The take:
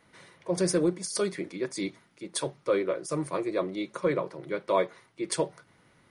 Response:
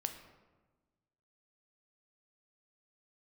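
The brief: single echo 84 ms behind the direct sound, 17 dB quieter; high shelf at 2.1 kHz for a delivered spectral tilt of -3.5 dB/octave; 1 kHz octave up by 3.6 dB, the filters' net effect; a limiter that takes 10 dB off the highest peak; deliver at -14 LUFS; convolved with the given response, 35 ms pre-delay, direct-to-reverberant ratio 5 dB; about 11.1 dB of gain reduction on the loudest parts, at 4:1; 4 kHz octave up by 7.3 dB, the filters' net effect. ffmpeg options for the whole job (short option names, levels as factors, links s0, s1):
-filter_complex "[0:a]equalizer=f=1000:t=o:g=3,highshelf=f=2100:g=4,equalizer=f=4000:t=o:g=5,acompressor=threshold=0.0224:ratio=4,alimiter=level_in=1.68:limit=0.0631:level=0:latency=1,volume=0.596,aecho=1:1:84:0.141,asplit=2[s0][s1];[1:a]atrim=start_sample=2205,adelay=35[s2];[s1][s2]afir=irnorm=-1:irlink=0,volume=0.562[s3];[s0][s3]amix=inputs=2:normalize=0,volume=16.8"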